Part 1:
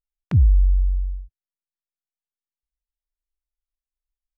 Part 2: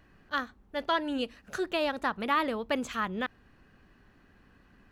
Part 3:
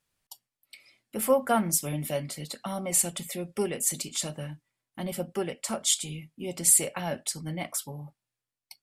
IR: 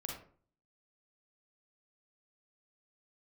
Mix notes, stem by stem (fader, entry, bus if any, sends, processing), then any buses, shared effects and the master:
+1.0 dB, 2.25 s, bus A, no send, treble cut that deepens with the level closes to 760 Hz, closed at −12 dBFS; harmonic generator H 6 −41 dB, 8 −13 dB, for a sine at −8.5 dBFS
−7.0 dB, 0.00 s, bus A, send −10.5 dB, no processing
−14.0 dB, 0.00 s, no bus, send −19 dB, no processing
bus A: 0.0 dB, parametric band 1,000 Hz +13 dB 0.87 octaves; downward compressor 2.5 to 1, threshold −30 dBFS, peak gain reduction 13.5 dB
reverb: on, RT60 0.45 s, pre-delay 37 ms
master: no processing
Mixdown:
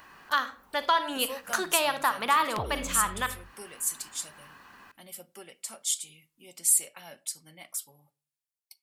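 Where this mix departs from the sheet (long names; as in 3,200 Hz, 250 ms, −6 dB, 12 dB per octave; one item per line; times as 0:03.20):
stem 2 −7.0 dB → +5.0 dB
master: extra spectral tilt +3.5 dB per octave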